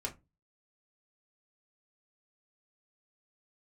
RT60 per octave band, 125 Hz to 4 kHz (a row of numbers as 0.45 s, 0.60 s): 0.40 s, 0.35 s, 0.25 s, 0.20 s, 0.20 s, 0.15 s